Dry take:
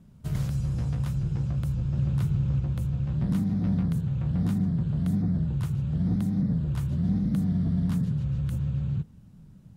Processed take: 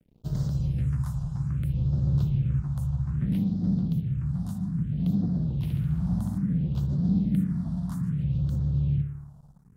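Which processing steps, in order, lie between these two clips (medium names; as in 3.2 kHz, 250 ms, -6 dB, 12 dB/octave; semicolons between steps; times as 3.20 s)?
spring tank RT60 1.2 s, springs 56 ms, chirp 30 ms, DRR 8 dB; crossover distortion -51.5 dBFS; peaking EQ 88 Hz -11.5 dB 0.29 oct; phase shifter stages 4, 0.61 Hz, lowest notch 370–2400 Hz; 3.48–4.99 s: peaking EQ 940 Hz -5.5 dB 2.5 oct; 5.56–6.38 s: flutter echo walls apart 11.8 m, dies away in 1 s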